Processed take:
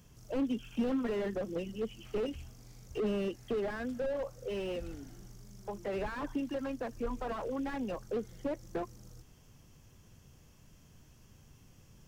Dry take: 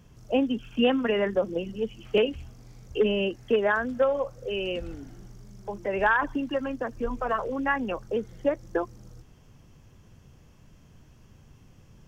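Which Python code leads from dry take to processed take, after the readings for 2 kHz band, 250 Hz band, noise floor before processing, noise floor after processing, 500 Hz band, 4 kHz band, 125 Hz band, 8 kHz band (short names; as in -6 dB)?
-16.5 dB, -6.0 dB, -55 dBFS, -60 dBFS, -9.5 dB, -14.0 dB, -5.0 dB, n/a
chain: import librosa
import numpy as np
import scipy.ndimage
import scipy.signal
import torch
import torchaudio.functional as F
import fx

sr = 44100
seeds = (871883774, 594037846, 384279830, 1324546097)

y = fx.high_shelf(x, sr, hz=4600.0, db=11.0)
y = fx.slew_limit(y, sr, full_power_hz=25.0)
y = F.gain(torch.from_numpy(y), -5.5).numpy()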